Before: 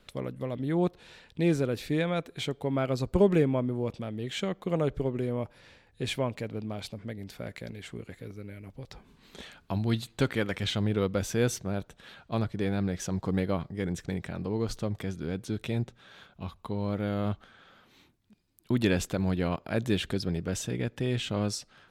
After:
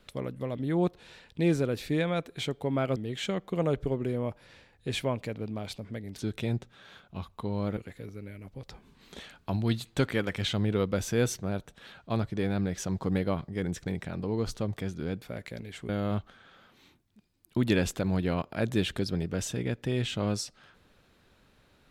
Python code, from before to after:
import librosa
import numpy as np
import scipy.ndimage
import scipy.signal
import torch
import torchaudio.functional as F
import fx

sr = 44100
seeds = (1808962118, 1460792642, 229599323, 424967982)

y = fx.edit(x, sr, fx.cut(start_s=2.96, length_s=1.14),
    fx.swap(start_s=7.32, length_s=0.67, other_s=15.44, other_length_s=1.59), tone=tone)